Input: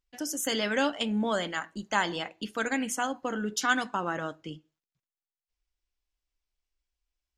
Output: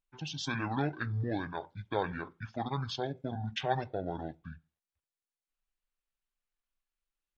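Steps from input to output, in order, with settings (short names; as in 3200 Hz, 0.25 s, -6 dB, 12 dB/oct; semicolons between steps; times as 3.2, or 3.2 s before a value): pitch shift -11.5 st; gain -5 dB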